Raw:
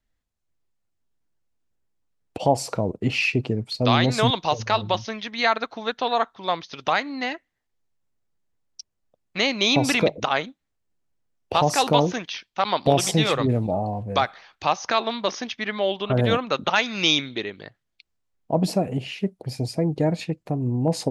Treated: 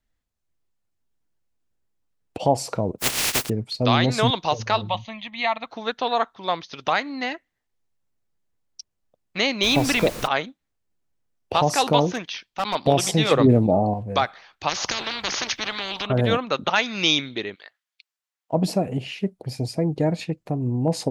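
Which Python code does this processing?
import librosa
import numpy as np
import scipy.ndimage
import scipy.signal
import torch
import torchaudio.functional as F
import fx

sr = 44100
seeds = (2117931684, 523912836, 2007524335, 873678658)

y = fx.spec_flatten(x, sr, power=0.13, at=(2.98, 3.48), fade=0.02)
y = fx.fixed_phaser(y, sr, hz=1500.0, stages=6, at=(4.89, 5.67))
y = fx.dmg_noise_colour(y, sr, seeds[0], colour='pink', level_db=-35.0, at=(9.62, 10.26), fade=0.02)
y = fx.overload_stage(y, sr, gain_db=18.5, at=(12.09, 12.75))
y = fx.peak_eq(y, sr, hz=310.0, db=8.0, octaves=2.8, at=(13.31, 13.94))
y = fx.spectral_comp(y, sr, ratio=10.0, at=(14.68, 16.05), fade=0.02)
y = fx.highpass(y, sr, hz=1100.0, slope=12, at=(17.54, 18.52), fade=0.02)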